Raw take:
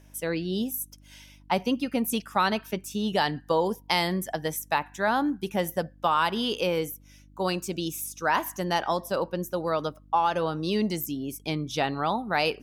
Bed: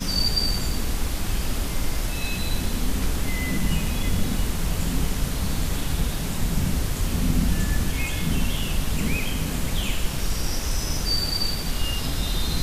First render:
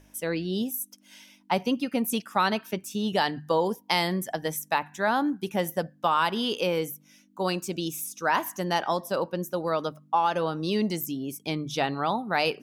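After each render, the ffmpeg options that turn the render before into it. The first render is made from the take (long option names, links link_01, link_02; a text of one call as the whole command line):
ffmpeg -i in.wav -af "bandreject=frequency=50:width_type=h:width=4,bandreject=frequency=100:width_type=h:width=4,bandreject=frequency=150:width_type=h:width=4" out.wav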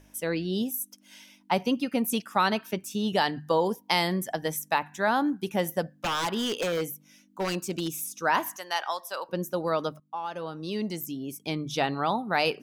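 ffmpeg -i in.wav -filter_complex "[0:a]asettb=1/sr,asplit=3[link_01][link_02][link_03];[link_01]atrim=end=5.944[link_04];[link_02]atrim=start=5.94:end=7.95,asetpts=PTS-STARTPTS,afade=type=in:duration=0.004:curve=qsin,afade=type=out:start_time=2.006:duration=0.004:curve=qsin,aeval=exprs='0.0794*(abs(mod(val(0)/0.0794+3,4)-2)-1)':channel_layout=same[link_05];[link_03]atrim=start=7.946[link_06];[link_04][link_05]acrossfade=duration=0.004:curve1=hsin:curve2=qsin[link_07];[link_07][link_06]acrossfade=duration=0.004:curve1=qsin:curve2=hsin,asettb=1/sr,asplit=3[link_08][link_09][link_10];[link_08]atrim=end=8.564[link_11];[link_09]atrim=start=8.56:end=9.29,asetpts=PTS-STARTPTS,afade=type=in:duration=0.004:curve=qsin,afade=type=out:start_time=0.726:duration=0.004:curve=qsin,highpass=920[link_12];[link_10]atrim=start=9.286[link_13];[link_11][link_12]acrossfade=duration=0.004:curve1=hsin:curve2=qsin[link_14];[link_14][link_13]acrossfade=duration=0.004:curve1=qsin:curve2=hsin,asplit=2[link_15][link_16];[link_15]atrim=end=10,asetpts=PTS-STARTPTS,afade=type=out:start_time=9.996:duration=0.004:curve=hsin:silence=0.199526[link_17];[link_16]atrim=start=10,asetpts=PTS-STARTPTS,afade=type=in:duration=1.78:silence=0.199526[link_18];[link_17][link_18]concat=n=2:v=0:a=1" out.wav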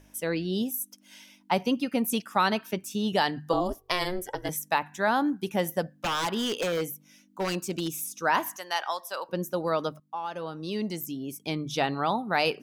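ffmpeg -i in.wav -filter_complex "[0:a]asettb=1/sr,asplit=3[link_01][link_02][link_03];[link_01]atrim=end=3.534[link_04];[link_02]atrim=start=3.53:end=4.49,asetpts=PTS-STARTPTS,afade=type=in:duration=0.004:curve=qsin,afade=type=out:start_time=0.956:duration=0.004:curve=qsin,aeval=exprs='val(0)*sin(2*PI*180*n/s)':channel_layout=same[link_05];[link_03]atrim=start=4.486[link_06];[link_04][link_05]acrossfade=duration=0.004:curve1=hsin:curve2=qsin[link_07];[link_07][link_06]acrossfade=duration=0.004:curve1=qsin:curve2=hsin" out.wav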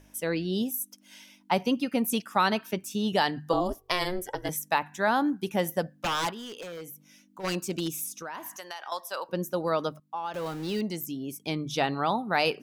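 ffmpeg -i in.wav -filter_complex "[0:a]asplit=3[link_01][link_02][link_03];[link_01]afade=type=out:start_time=6.3:duration=0.02[link_04];[link_02]acompressor=threshold=-41dB:ratio=3:attack=3.2:release=140:knee=1:detection=peak,afade=type=in:start_time=6.3:duration=0.02,afade=type=out:start_time=7.43:duration=0.02[link_05];[link_03]afade=type=in:start_time=7.43:duration=0.02[link_06];[link_04][link_05][link_06]amix=inputs=3:normalize=0,asettb=1/sr,asplit=3[link_07][link_08][link_09];[link_07]atrim=end=8.184[link_10];[link_08]atrim=start=8.18:end=8.92,asetpts=PTS-STARTPTS,afade=type=in:duration=0.004:curve=qsin,afade=type=out:start_time=0.736:duration=0.004:curve=qsin,acompressor=threshold=-35dB:ratio=6:attack=3.2:release=140:knee=1:detection=peak[link_11];[link_09]atrim=start=8.916[link_12];[link_10][link_11]acrossfade=duration=0.004:curve1=hsin:curve2=qsin[link_13];[link_13][link_12]acrossfade=duration=0.004:curve1=qsin:curve2=hsin,asettb=1/sr,asplit=3[link_14][link_15][link_16];[link_14]atrim=end=10.344[link_17];[link_15]atrim=start=10.34:end=10.81,asetpts=PTS-STARTPTS,afade=type=in:duration=0.004:curve=qsin,afade=type=out:start_time=0.466:duration=0.004:curve=qsin,aeval=exprs='val(0)+0.5*0.0126*sgn(val(0))':channel_layout=same[link_18];[link_16]atrim=start=10.806[link_19];[link_17][link_18]acrossfade=duration=0.004:curve1=hsin:curve2=qsin[link_20];[link_20][link_19]acrossfade=duration=0.004:curve1=qsin:curve2=hsin" out.wav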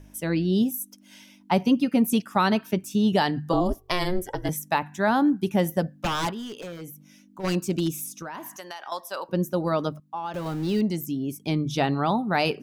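ffmpeg -i in.wav -af "lowshelf=frequency=380:gain=10,bandreject=frequency=490:width=12" out.wav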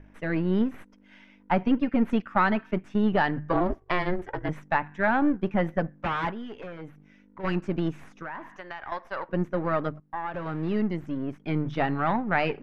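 ffmpeg -i in.wav -af "aeval=exprs='if(lt(val(0),0),0.447*val(0),val(0))':channel_layout=same,lowpass=frequency=1900:width_type=q:width=1.7" out.wav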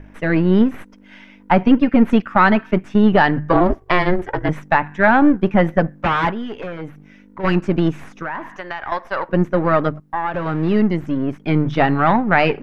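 ffmpeg -i in.wav -af "volume=10.5dB,alimiter=limit=-1dB:level=0:latency=1" out.wav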